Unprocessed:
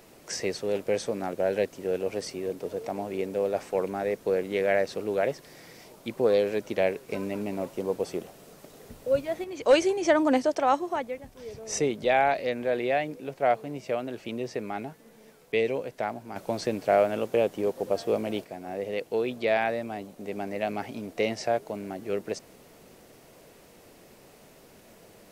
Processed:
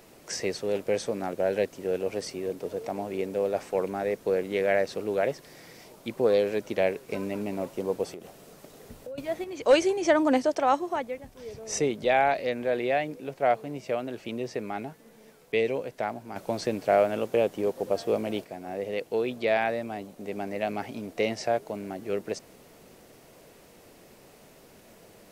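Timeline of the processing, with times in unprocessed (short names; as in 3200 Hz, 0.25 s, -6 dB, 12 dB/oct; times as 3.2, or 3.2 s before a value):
8.1–9.18 compressor 12:1, threshold -36 dBFS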